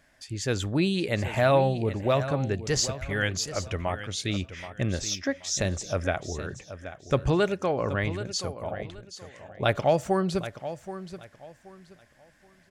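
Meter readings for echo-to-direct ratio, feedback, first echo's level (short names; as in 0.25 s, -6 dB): -12.0 dB, 26%, -12.5 dB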